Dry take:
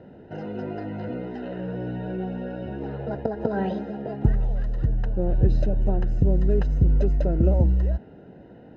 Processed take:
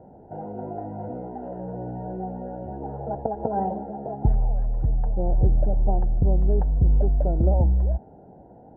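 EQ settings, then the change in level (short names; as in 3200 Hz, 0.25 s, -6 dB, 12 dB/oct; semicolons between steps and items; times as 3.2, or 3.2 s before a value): synth low-pass 810 Hz, resonance Q 4.9; low shelf 100 Hz +9 dB; -6.0 dB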